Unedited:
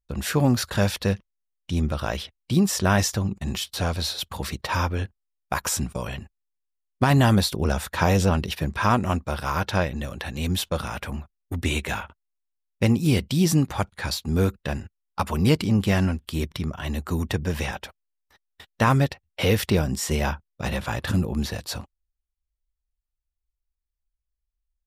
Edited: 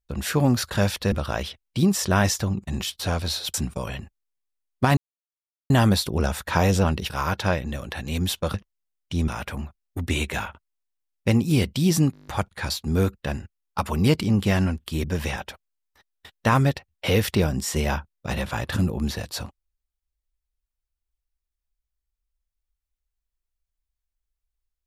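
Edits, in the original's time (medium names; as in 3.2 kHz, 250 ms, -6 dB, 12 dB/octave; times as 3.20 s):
1.12–1.86 s: move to 10.83 s
4.28–5.73 s: delete
7.16 s: insert silence 0.73 s
8.56–9.39 s: delete
13.68 s: stutter 0.02 s, 8 plays
16.45–17.39 s: delete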